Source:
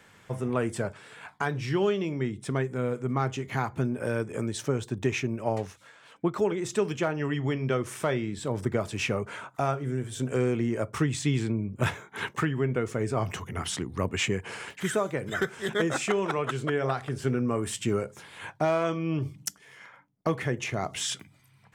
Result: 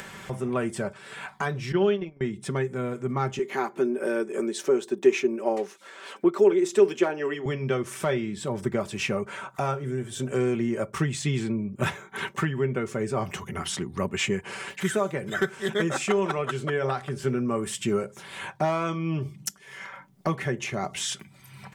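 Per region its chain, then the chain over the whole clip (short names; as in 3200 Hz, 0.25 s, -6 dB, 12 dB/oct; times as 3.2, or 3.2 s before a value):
1.72–2.21 gate -29 dBFS, range -24 dB + LPF 3700 Hz + bell 1500 Hz +5 dB 0.28 oct
3.39–7.46 HPF 230 Hz 24 dB/oct + bell 380 Hz +8.5 dB 0.4 oct
whole clip: comb 5.2 ms, depth 51%; upward compressor, threshold -30 dBFS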